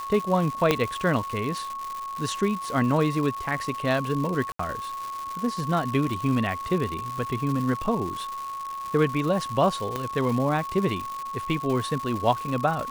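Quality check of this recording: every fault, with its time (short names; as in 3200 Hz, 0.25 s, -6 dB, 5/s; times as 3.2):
crackle 310/s -30 dBFS
tone 1100 Hz -31 dBFS
0.71 pop -6 dBFS
4.52–4.59 gap 74 ms
9.96 pop -14 dBFS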